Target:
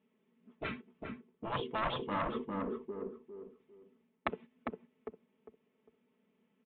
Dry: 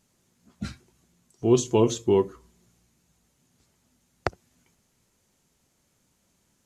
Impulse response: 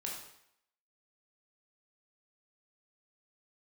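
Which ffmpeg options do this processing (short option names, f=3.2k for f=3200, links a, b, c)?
-filter_complex "[0:a]aeval=exprs='0.447*(cos(1*acos(clip(val(0)/0.447,-1,1)))-cos(1*PI/2))+0.112*(cos(3*acos(clip(val(0)/0.447,-1,1)))-cos(3*PI/2))+0.0141*(cos(4*acos(clip(val(0)/0.447,-1,1)))-cos(4*PI/2))+0.0224*(cos(5*acos(clip(val(0)/0.447,-1,1)))-cos(5*PI/2))+0.00398*(cos(7*acos(clip(val(0)/0.447,-1,1)))-cos(7*PI/2))':c=same,agate=range=-15dB:threshold=-52dB:ratio=16:detection=peak,aecho=1:1:4.6:0.58,areverse,acompressor=threshold=-34dB:ratio=12,areverse,highpass=220,equalizer=f=230:t=q:w=4:g=7,equalizer=f=440:t=q:w=4:g=7,equalizer=f=730:t=q:w=4:g=-7,equalizer=f=1.5k:t=q:w=4:g=-7,lowpass=f=2.9k:w=0.5412,lowpass=f=2.9k:w=1.3066,aresample=8000,asoftclip=type=tanh:threshold=-34.5dB,aresample=44100,asplit=2[a][b];[b]adelay=402,lowpass=f=1.3k:p=1,volume=-4dB,asplit=2[c][d];[d]adelay=402,lowpass=f=1.3k:p=1,volume=0.3,asplit=2[e][f];[f]adelay=402,lowpass=f=1.3k:p=1,volume=0.3,asplit=2[g][h];[h]adelay=402,lowpass=f=1.3k:p=1,volume=0.3[i];[a][c][e][g][i]amix=inputs=5:normalize=0,afftfilt=real='re*lt(hypot(re,im),0.0282)':imag='im*lt(hypot(re,im),0.0282)':win_size=1024:overlap=0.75,volume=16dB"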